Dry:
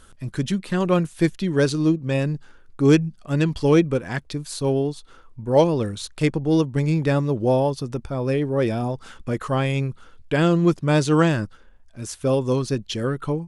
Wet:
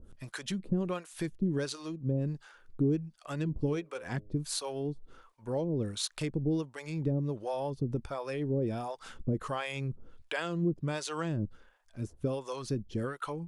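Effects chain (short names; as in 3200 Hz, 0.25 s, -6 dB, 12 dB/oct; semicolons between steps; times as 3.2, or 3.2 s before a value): compressor 5:1, threshold -25 dBFS, peak gain reduction 13 dB; 3.42–4.31 de-hum 104.3 Hz, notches 6; harmonic tremolo 1.4 Hz, depth 100%, crossover 540 Hz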